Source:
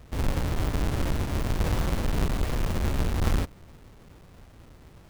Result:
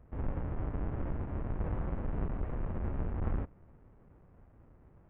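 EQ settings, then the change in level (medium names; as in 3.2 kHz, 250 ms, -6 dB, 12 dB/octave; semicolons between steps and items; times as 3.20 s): Gaussian low-pass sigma 5 samples; -8.5 dB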